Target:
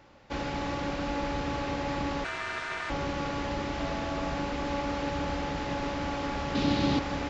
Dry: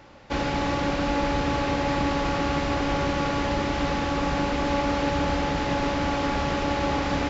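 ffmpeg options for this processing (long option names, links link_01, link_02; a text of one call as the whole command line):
ffmpeg -i in.wav -filter_complex "[0:a]asettb=1/sr,asplit=3[link_01][link_02][link_03];[link_01]atrim=end=2.244[link_04];[link_02]atrim=start=2.24:end=2.9,asetpts=PTS-STARTPTS,afade=type=in:duration=0.004:curve=qsin,afade=type=out:start_time=0.656:duration=0.004:curve=qsin,aeval=exprs='val(0)*sin(2*PI*1500*n/s)':channel_layout=same[link_05];[link_03]atrim=start=2.896[link_06];[link_04][link_05]acrossfade=duration=0.004:curve1=hsin:curve2=qsin[link_07];[link_07][link_06]acrossfade=duration=0.004:curve1=qsin:curve2=hsin,asettb=1/sr,asplit=3[link_08][link_09][link_10];[link_08]atrim=end=3.794[link_11];[link_09]atrim=start=3.79:end=4.35,asetpts=PTS-STARTPTS,afade=type=in:duration=0.004:curve=qsin,afade=type=out:start_time=0.556:duration=0.004:curve=qsin,aeval=exprs='val(0)+0.0224*sin(2*PI*660*n/s)':channel_layout=same[link_12];[link_10]atrim=start=4.346[link_13];[link_11][link_12]acrossfade=duration=0.004:curve1=hsin:curve2=qsin[link_14];[link_14][link_13]acrossfade=duration=0.004:curve1=qsin:curve2=hsin,asettb=1/sr,asplit=3[link_15][link_16][link_17];[link_15]atrim=end=6.554[link_18];[link_16]atrim=start=6.55:end=6.99,asetpts=PTS-STARTPTS,afade=type=in:duration=0.004:curve=qsin,afade=type=out:start_time=0.436:duration=0.004:curve=qsin,equalizer=frequency=125:width_type=o:width=1:gain=9,equalizer=frequency=250:width_type=o:width=1:gain=10,equalizer=frequency=4000:width_type=o:width=1:gain=11[link_19];[link_17]atrim=start=6.986[link_20];[link_18][link_19]acrossfade=duration=0.004:curve1=hsin:curve2=qsin[link_21];[link_21][link_20]acrossfade=duration=0.004:curve1=qsin:curve2=hsin,volume=-7dB" out.wav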